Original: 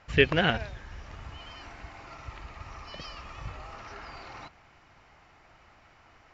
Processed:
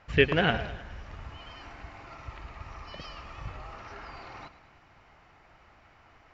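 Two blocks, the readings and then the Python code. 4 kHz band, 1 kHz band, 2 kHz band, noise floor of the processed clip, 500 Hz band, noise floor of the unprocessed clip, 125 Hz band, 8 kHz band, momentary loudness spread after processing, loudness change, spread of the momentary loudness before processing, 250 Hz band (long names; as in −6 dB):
−2.0 dB, 0.0 dB, −0.5 dB, −59 dBFS, 0.0 dB, −59 dBFS, 0.0 dB, can't be measured, 21 LU, −0.5 dB, 21 LU, 0.0 dB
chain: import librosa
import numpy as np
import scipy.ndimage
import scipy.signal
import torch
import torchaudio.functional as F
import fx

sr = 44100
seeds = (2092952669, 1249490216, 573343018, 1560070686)

p1 = fx.high_shelf(x, sr, hz=5700.0, db=-9.0)
y = p1 + fx.echo_feedback(p1, sr, ms=103, feedback_pct=54, wet_db=-14.5, dry=0)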